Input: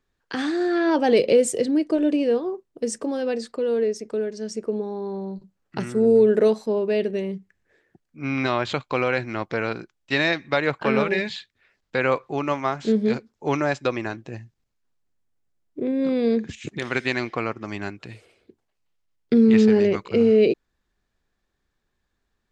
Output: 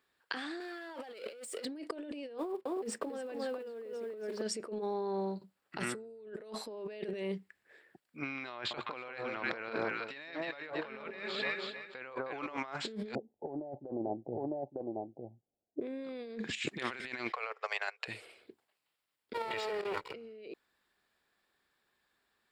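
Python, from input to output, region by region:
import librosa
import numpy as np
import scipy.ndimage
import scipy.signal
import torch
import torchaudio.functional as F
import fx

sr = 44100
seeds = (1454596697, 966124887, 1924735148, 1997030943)

y = fx.chain(x, sr, fx.highpass(hz=520.0, slope=6),
    fx.power_curve(exponent=0.7), at=(0.6, 1.65))
y = fx.chain(y, sr, fx.block_float(bits=5),
    fx.lowpass(hz=1700.0, slope=6),
    fx.echo_single(ms=274, db=-4.0), at=(2.38, 4.42))
y = fx.chain(y, sr, fx.high_shelf(hz=7800.0, db=-8.0),
    fx.echo_alternate(ms=156, hz=1100.0, feedback_pct=51, wet_db=-6), at=(8.55, 12.57))
y = fx.chain(y, sr, fx.steep_lowpass(hz=810.0, slope=72),
    fx.echo_single(ms=905, db=-6.0), at=(13.15, 15.81))
y = fx.chain(y, sr, fx.cheby1_highpass(hz=430.0, order=8),
    fx.transient(attack_db=1, sustain_db=-11), at=(17.32, 18.08))
y = fx.chain(y, sr, fx.lower_of_two(delay_ms=2.1),
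    fx.level_steps(step_db=10), at=(19.33, 20.14))
y = fx.highpass(y, sr, hz=760.0, slope=6)
y = fx.peak_eq(y, sr, hz=6200.0, db=-13.0, octaves=0.26)
y = fx.over_compress(y, sr, threshold_db=-38.0, ratio=-1.0)
y = y * librosa.db_to_amplitude(-3.0)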